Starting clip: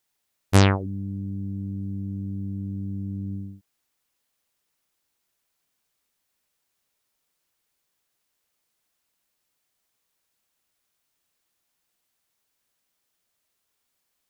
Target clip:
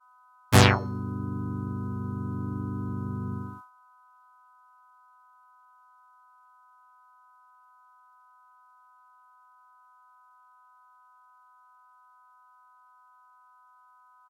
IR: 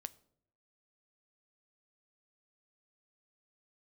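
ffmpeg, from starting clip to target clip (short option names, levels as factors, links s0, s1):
-filter_complex "[0:a]aeval=exprs='val(0)+0.00447*sin(2*PI*1000*n/s)':c=same,bandreject=f=287.1:t=h:w=4,bandreject=f=574.2:t=h:w=4,bandreject=f=861.3:t=h:w=4,bandreject=f=1148.4:t=h:w=4,bandreject=f=1435.5:t=h:w=4,bandreject=f=1722.6:t=h:w=4,bandreject=f=2009.7:t=h:w=4,bandreject=f=2296.8:t=h:w=4,bandreject=f=2583.9:t=h:w=4,bandreject=f=2871:t=h:w=4,bandreject=f=3158.1:t=h:w=4,bandreject=f=3445.2:t=h:w=4,bandreject=f=3732.3:t=h:w=4,bandreject=f=4019.4:t=h:w=4,bandreject=f=4306.5:t=h:w=4,agate=range=0.0224:threshold=0.00794:ratio=3:detection=peak,acrossover=split=770[s0][s1];[s1]acontrast=60[s2];[s0][s2]amix=inputs=2:normalize=0,aresample=32000,aresample=44100,asplit=4[s3][s4][s5][s6];[s4]asetrate=33038,aresample=44100,atempo=1.33484,volume=0.178[s7];[s5]asetrate=55563,aresample=44100,atempo=0.793701,volume=0.794[s8];[s6]asetrate=66075,aresample=44100,atempo=0.66742,volume=0.316[s9];[s3][s7][s8][s9]amix=inputs=4:normalize=0,volume=0.631"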